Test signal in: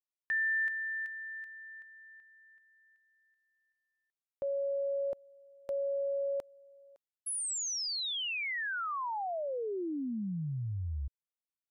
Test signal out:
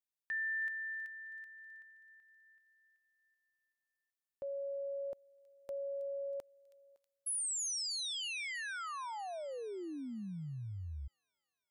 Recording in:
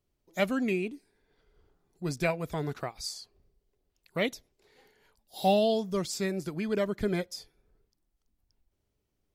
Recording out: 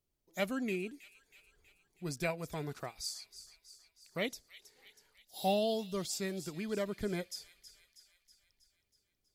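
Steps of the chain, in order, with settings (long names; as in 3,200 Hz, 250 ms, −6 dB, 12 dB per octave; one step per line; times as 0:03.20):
high-shelf EQ 4,600 Hz +7 dB
on a send: delay with a high-pass on its return 321 ms, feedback 59%, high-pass 2,800 Hz, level −12 dB
on the sum: level −7 dB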